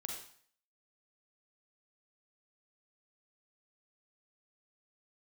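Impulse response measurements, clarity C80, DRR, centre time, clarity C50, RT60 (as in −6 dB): 6.5 dB, 0.5 dB, 37 ms, 2.5 dB, 0.55 s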